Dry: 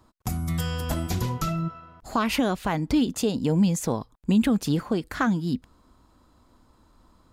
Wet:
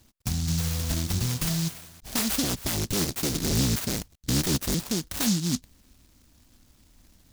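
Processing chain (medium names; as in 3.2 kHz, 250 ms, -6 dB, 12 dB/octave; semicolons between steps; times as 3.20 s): 2.43–4.75 s: cycle switcher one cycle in 3, inverted; peaking EQ 430 Hz -5.5 dB 1.2 oct; peak limiter -18.5 dBFS, peak gain reduction 6.5 dB; delay time shaken by noise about 5.2 kHz, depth 0.32 ms; trim +1.5 dB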